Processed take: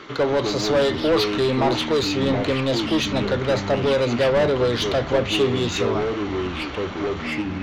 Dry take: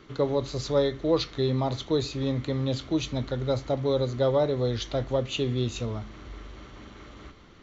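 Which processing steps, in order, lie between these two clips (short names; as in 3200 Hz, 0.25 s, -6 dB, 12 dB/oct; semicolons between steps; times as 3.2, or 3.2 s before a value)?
overdrive pedal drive 23 dB, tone 3200 Hz, clips at -11.5 dBFS; echoes that change speed 0.184 s, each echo -5 st, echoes 2, each echo -6 dB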